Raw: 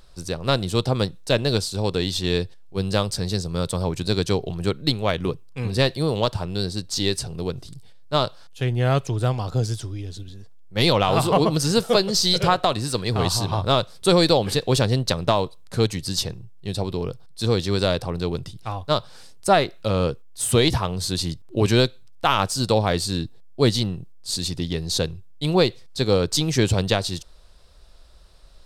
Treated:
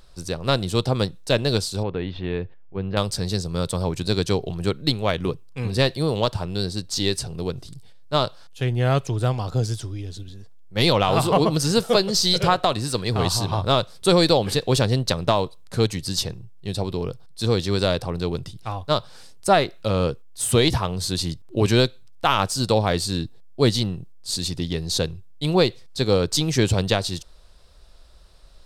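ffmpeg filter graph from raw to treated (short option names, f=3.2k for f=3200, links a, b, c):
-filter_complex "[0:a]asettb=1/sr,asplit=3[a][b][c];[a]atrim=end=1.834[d];[b]atrim=start=1.83:end=2.97,asetpts=PTS-STARTPTS,afade=t=in:d=0.004:c=qsin,afade=t=out:st=1.136:d=0.004:c=qsin,lowpass=f=2.5k:w=0.5412,lowpass=f=2.5k:w=1.3066,acompressor=threshold=-27dB:ratio=1.5:attack=3.2:release=140:knee=1:detection=peak[e];[c]atrim=start=2.966[f];[d][e]acrossfade=d=0.004:c1=hsin:c2=qsin[g];[g][f]acrossfade=d=0.004:c1=qsin:c2=hsin"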